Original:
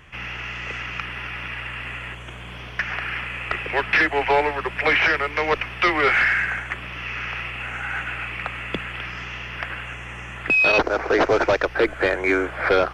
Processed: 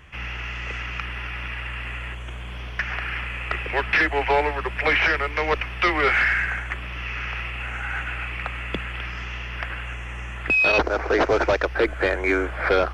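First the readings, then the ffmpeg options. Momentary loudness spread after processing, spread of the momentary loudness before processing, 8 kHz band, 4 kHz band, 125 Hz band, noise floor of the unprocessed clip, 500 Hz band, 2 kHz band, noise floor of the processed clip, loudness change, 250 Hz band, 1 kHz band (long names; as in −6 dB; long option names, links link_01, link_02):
13 LU, 14 LU, can't be measured, −1.5 dB, +3.5 dB, −37 dBFS, −1.5 dB, −1.5 dB, −33 dBFS, −1.5 dB, −1.5 dB, −1.5 dB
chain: -af "equalizer=frequency=64:width=5.4:gain=13.5,volume=-1.5dB"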